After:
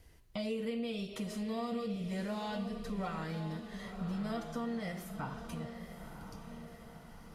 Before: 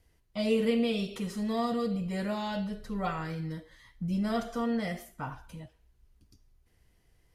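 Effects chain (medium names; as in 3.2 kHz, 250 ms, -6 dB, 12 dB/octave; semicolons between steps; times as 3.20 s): compression 3:1, threshold -47 dBFS, peak gain reduction 18 dB; on a send: echo that smears into a reverb 998 ms, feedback 55%, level -8.5 dB; on the sum: trim +6.5 dB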